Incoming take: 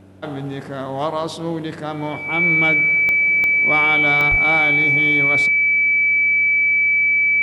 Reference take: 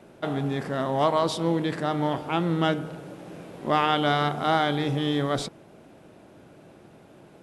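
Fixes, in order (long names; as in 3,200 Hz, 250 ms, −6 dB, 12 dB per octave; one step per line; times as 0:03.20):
click removal
hum removal 96.2 Hz, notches 3
notch filter 2,300 Hz, Q 30
0:04.30–0:04.42: high-pass filter 140 Hz 24 dB per octave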